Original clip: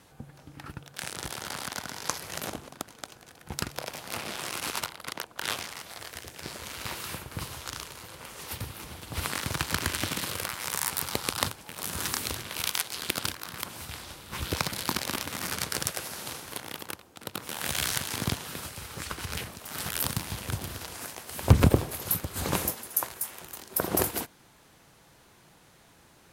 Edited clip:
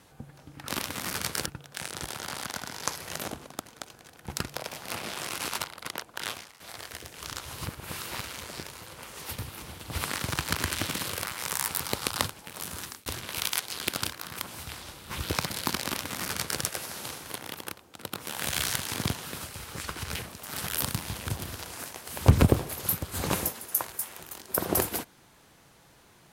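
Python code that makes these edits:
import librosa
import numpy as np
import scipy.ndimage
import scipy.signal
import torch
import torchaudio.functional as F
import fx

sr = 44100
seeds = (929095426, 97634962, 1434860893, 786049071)

y = fx.edit(x, sr, fx.fade_out_to(start_s=5.33, length_s=0.49, floor_db=-19.5),
    fx.reverse_span(start_s=6.39, length_s=1.5),
    fx.fade_out_span(start_s=11.49, length_s=0.79, curve='qsin'),
    fx.duplicate(start_s=15.05, length_s=0.78, to_s=0.68), tone=tone)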